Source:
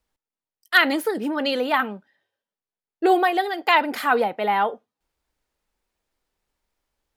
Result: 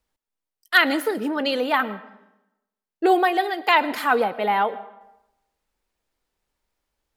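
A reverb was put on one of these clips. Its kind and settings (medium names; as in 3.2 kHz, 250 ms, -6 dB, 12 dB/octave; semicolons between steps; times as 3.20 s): algorithmic reverb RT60 0.91 s, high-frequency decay 0.7×, pre-delay 75 ms, DRR 17 dB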